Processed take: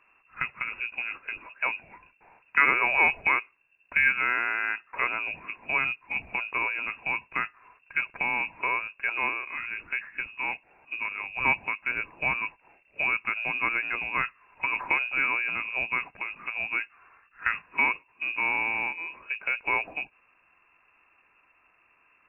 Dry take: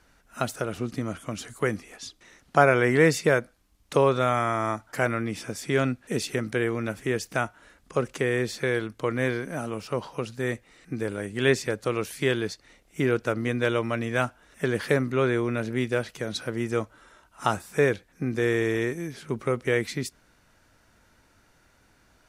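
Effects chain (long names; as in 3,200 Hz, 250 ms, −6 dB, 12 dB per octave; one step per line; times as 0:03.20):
hollow resonant body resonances 1,100/1,700 Hz, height 8 dB, ringing for 35 ms
voice inversion scrambler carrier 2,700 Hz
floating-point word with a short mantissa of 6 bits
level −3.5 dB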